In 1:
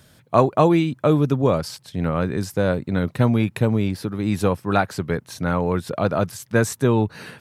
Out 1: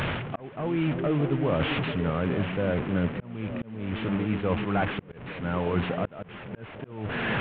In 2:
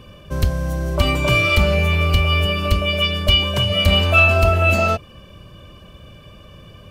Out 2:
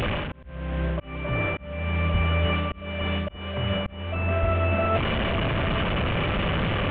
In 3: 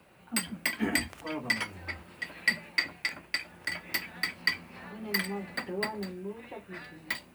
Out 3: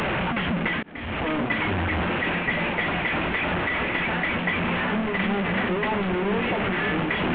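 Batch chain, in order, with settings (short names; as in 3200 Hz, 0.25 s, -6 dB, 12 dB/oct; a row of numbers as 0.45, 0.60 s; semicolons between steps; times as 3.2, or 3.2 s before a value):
delta modulation 16 kbps, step -24.5 dBFS; reverse; compressor 5:1, threshold -28 dBFS; reverse; delay with a stepping band-pass 0.282 s, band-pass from 210 Hz, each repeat 0.7 oct, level -4 dB; auto swell 0.486 s; normalise peaks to -12 dBFS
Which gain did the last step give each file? +4.0, +6.5, +6.0 dB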